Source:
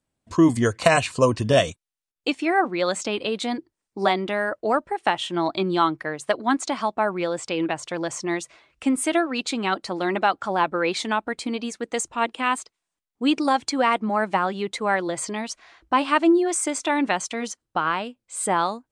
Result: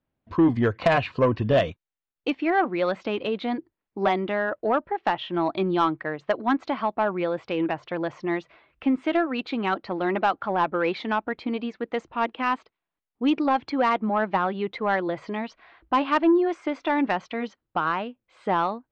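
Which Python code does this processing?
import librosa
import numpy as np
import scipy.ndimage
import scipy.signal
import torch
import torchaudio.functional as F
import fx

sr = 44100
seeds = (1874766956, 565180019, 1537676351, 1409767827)

y = scipy.signal.sosfilt(scipy.signal.bessel(6, 2400.0, 'lowpass', norm='mag', fs=sr, output='sos'), x)
y = 10.0 ** (-11.5 / 20.0) * np.tanh(y / 10.0 ** (-11.5 / 20.0))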